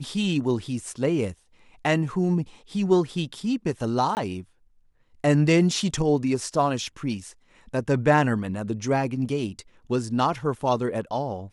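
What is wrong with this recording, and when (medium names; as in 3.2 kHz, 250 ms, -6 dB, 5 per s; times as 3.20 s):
4.15–4.17 s: dropout 19 ms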